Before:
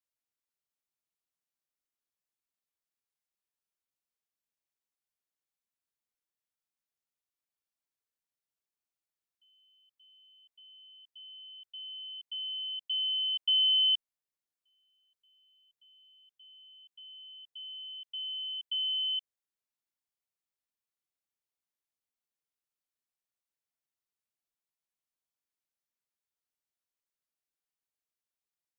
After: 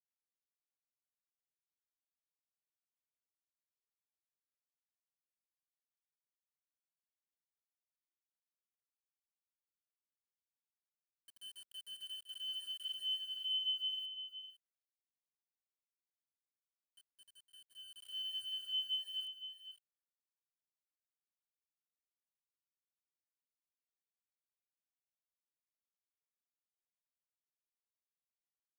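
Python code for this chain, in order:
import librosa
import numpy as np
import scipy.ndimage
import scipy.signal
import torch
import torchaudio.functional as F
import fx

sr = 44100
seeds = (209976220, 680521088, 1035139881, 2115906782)

p1 = fx.phase_scramble(x, sr, seeds[0], window_ms=200)
p2 = fx.bass_treble(p1, sr, bass_db=10, treble_db=-3)
p3 = np.where(np.abs(p2) >= 10.0 ** (-46.5 / 20.0), p2, 0.0)
p4 = fx.rider(p3, sr, range_db=4, speed_s=0.5)
p5 = p4 + fx.echo_single(p4, sr, ms=510, db=-10.0, dry=0)
y = p5 * librosa.db_to_amplitude(-8.0)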